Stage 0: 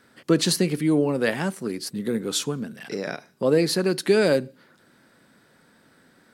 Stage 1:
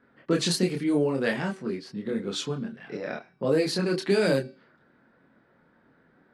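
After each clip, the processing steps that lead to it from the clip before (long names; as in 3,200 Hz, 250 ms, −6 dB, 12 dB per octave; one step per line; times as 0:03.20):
multi-voice chorus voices 6, 0.54 Hz, delay 26 ms, depth 4.4 ms
low-pass that shuts in the quiet parts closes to 1,700 Hz, open at −18.5 dBFS
hum removal 383 Hz, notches 14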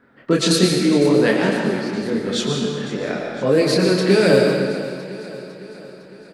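repeating echo 505 ms, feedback 56%, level −15 dB
convolution reverb RT60 1.7 s, pre-delay 80 ms, DRR 1 dB
level +7 dB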